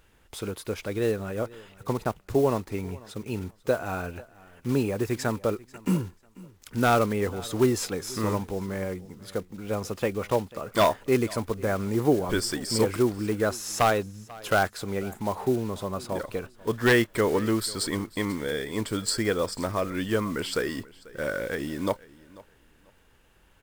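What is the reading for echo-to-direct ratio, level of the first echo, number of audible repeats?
-21.5 dB, -21.5 dB, 1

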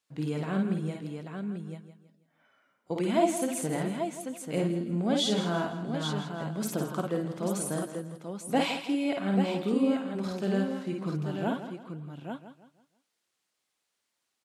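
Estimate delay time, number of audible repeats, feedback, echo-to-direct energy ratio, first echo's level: 52 ms, 10, no regular repeats, -0.5 dB, -4.0 dB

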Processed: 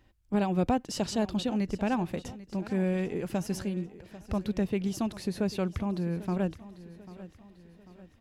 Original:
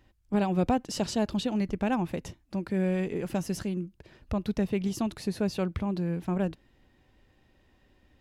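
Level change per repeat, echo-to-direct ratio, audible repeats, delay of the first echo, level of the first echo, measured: -6.5 dB, -16.0 dB, 3, 793 ms, -17.0 dB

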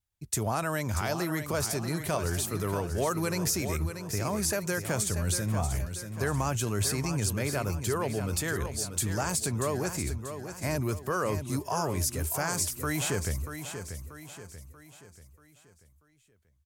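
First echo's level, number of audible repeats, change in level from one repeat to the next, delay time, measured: -9.0 dB, 4, -7.0 dB, 636 ms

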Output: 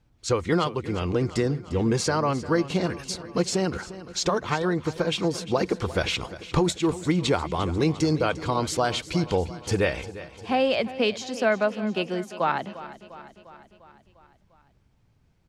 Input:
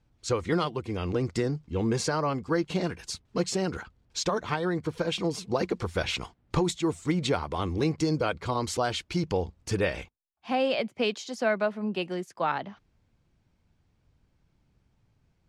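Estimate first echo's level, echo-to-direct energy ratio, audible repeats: -15.5 dB, -13.5 dB, 5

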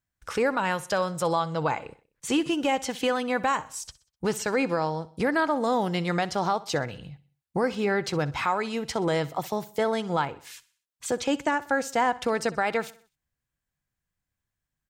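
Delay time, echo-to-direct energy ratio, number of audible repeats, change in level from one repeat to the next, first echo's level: 63 ms, -18.0 dB, 3, -6.5 dB, -19.0 dB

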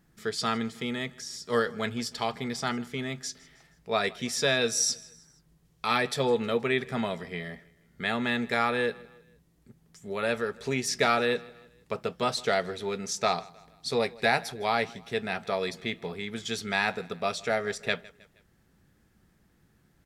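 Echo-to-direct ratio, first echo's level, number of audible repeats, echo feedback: -21.5 dB, -22.5 dB, 2, 46%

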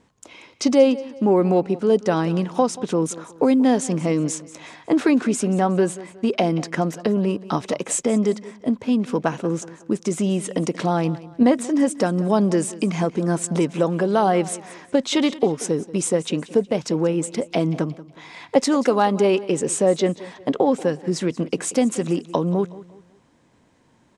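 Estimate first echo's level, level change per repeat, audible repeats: -18.0 dB, -8.5 dB, 2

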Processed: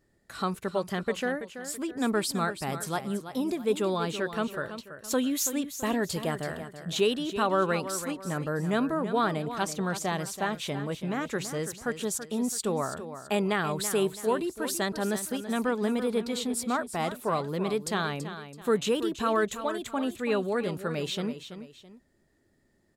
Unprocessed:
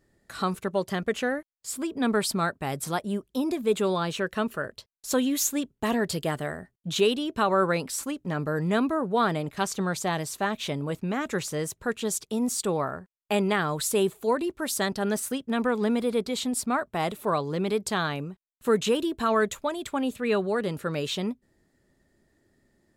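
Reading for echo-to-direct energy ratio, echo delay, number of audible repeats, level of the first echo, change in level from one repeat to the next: -10.5 dB, 331 ms, 2, -11.0 dB, -8.5 dB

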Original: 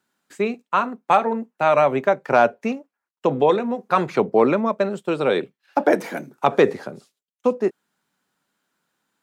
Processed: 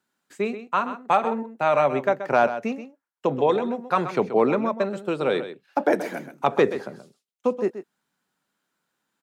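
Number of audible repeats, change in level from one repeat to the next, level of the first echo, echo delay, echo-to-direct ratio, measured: 1, no regular repeats, -11.5 dB, 129 ms, -11.5 dB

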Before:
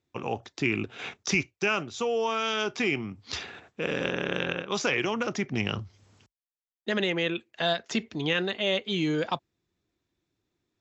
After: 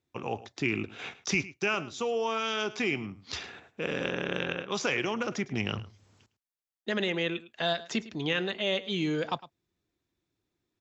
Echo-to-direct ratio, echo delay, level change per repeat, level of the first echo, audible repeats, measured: -17.5 dB, 107 ms, no regular repeats, -17.5 dB, 1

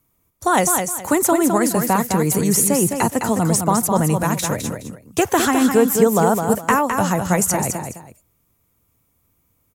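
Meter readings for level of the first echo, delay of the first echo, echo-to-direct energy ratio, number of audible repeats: -6.0 dB, 209 ms, -5.5 dB, 2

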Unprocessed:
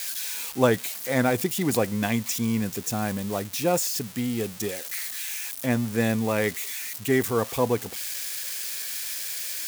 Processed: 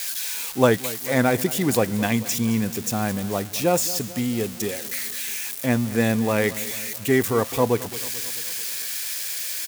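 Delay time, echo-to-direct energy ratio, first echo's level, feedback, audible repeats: 219 ms, -15.0 dB, -17.0 dB, 58%, 4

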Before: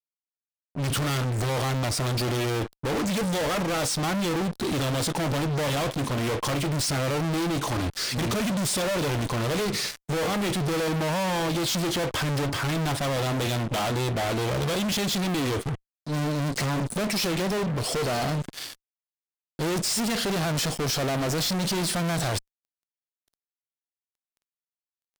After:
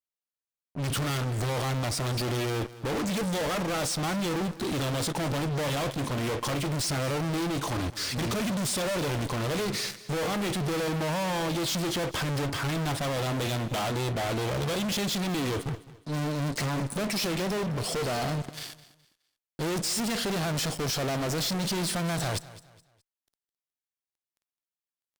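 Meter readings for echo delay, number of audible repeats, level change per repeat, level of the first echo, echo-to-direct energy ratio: 210 ms, 2, -9.5 dB, -17.5 dB, -17.0 dB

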